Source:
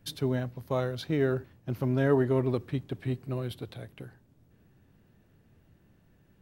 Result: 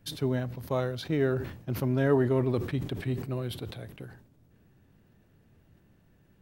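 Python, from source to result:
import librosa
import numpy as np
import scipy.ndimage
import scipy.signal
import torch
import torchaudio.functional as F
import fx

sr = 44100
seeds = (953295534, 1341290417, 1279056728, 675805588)

y = fx.sustainer(x, sr, db_per_s=85.0)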